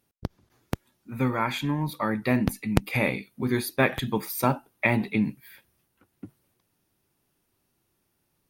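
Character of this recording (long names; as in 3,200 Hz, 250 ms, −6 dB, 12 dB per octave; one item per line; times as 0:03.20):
background noise floor −75 dBFS
spectral slope −5.0 dB per octave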